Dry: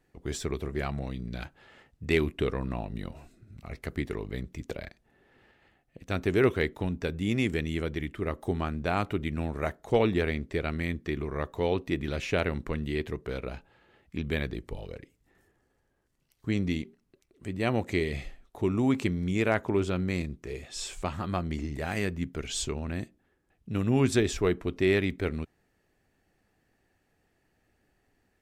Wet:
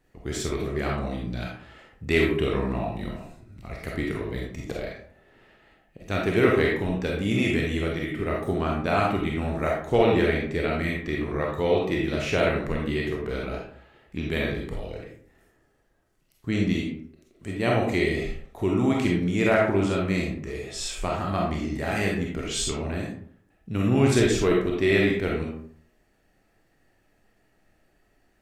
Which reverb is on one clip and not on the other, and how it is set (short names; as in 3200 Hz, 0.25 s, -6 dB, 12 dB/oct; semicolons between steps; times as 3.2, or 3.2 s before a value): digital reverb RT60 0.58 s, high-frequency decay 0.55×, pre-delay 5 ms, DRR -2.5 dB; gain +1.5 dB